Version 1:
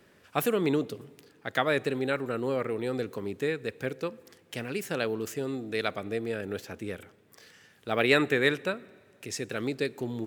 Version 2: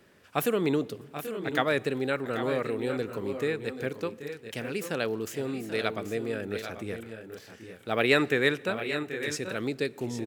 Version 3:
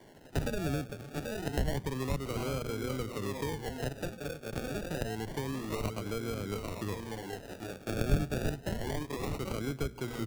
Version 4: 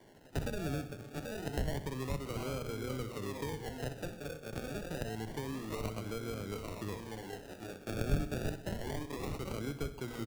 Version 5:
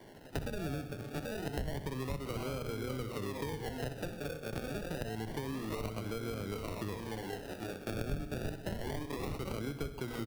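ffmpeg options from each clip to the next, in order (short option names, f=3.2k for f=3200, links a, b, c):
-af "aecho=1:1:783|810:0.237|0.282"
-filter_complex "[0:a]acrusher=samples=34:mix=1:aa=0.000001:lfo=1:lforange=20.4:lforate=0.28,bandreject=f=60:t=h:w=6,bandreject=f=120:t=h:w=6,bandreject=f=180:t=h:w=6,bandreject=f=240:t=h:w=6,acrossover=split=150[a][b];[b]acompressor=threshold=-41dB:ratio=4[c];[a][c]amix=inputs=2:normalize=0,volume=5dB"
-af "aecho=1:1:63|126|189|252|315:0.224|0.119|0.0629|0.0333|0.0177,volume=-4dB"
-af "equalizer=f=7.1k:t=o:w=0.37:g=-5,acompressor=threshold=-41dB:ratio=3,volume=5.5dB"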